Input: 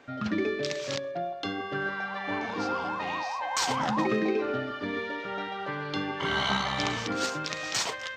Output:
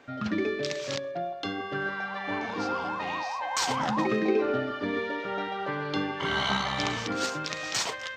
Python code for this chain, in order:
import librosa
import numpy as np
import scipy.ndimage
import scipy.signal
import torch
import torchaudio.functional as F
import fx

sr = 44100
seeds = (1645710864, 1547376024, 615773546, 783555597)

y = fx.peak_eq(x, sr, hz=450.0, db=3.5, octaves=2.6, at=(4.28, 6.07))